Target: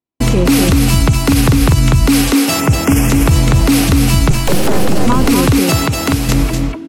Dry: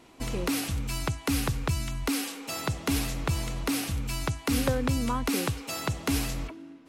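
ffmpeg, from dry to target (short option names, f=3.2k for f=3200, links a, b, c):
-filter_complex "[0:a]agate=range=-56dB:threshold=-44dB:ratio=16:detection=peak,highpass=f=100:p=1,lowshelf=f=290:g=10,asettb=1/sr,asplit=3[a][b][c];[a]atrim=end=2.604[d];[b]atrim=start=2.6:end=3.1,asetpts=PTS-STARTPTS,afade=t=in:d=0.004:c=qsin,afade=t=out:st=0.496:d=0.004:c=qsin,asuperstop=centerf=4000:order=4:qfactor=1.8[e];[c]atrim=start=3.096[f];[d][e]acrossfade=d=0.004:c1=hsin:c2=qsin[g];[g][f]acrossfade=d=0.004:c1=qsin:c2=hsin,asettb=1/sr,asplit=3[h][i][j];[h]atrim=end=4.304[k];[i]atrim=start=4.3:end=5.07,asetpts=PTS-STARTPTS,afade=t=in:d=0.004:c=qsin,afade=t=out:st=0.766:d=0.004:c=qsin,aeval=exprs='abs(val(0))':c=same[l];[j]atrim=start=5.066[m];[k][l]acrossfade=d=0.004:c1=hsin:c2=qsin[n];[n][m]acrossfade=d=0.004:c1=qsin:c2=hsin,asettb=1/sr,asplit=3[o][p][q];[o]atrim=end=5.804[r];[p]atrim=start=5.8:end=6.29,asetpts=PTS-STARTPTS,afade=t=in:d=0.004:c=qsin,afade=t=out:st=0.486:d=0.004:c=qsin,acompressor=threshold=-29dB:ratio=6[s];[q]atrim=start=6.286[t];[r][s]acrossfade=d=0.004:c1=hsin:c2=qsin[u];[u][t]acrossfade=d=0.004:c1=qsin:c2=hsin,aecho=1:1:245:0.596,alimiter=level_in=18.5dB:limit=-1dB:release=50:level=0:latency=1,volume=-1dB"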